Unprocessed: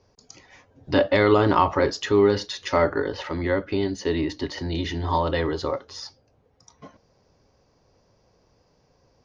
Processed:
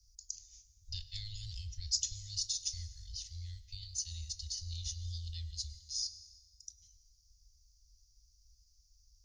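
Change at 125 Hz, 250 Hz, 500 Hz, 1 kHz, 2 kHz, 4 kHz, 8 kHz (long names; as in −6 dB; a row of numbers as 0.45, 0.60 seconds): −14.0 dB, below −40 dB, below −40 dB, below −40 dB, −36.0 dB, −5.5 dB, can't be measured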